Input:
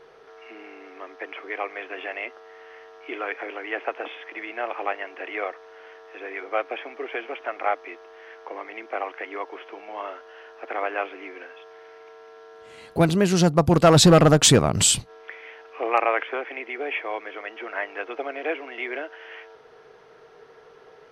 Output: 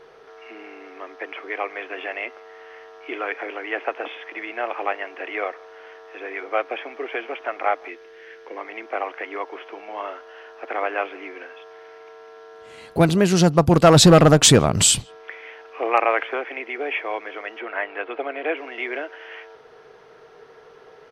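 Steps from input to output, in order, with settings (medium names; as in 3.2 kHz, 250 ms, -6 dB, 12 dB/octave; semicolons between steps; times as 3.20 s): 7.88–8.57 s: high-order bell 880 Hz -9.5 dB 1.3 oct; 17.60–18.57 s: low-pass 3.9 kHz 24 dB/octave; speakerphone echo 160 ms, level -27 dB; trim +2.5 dB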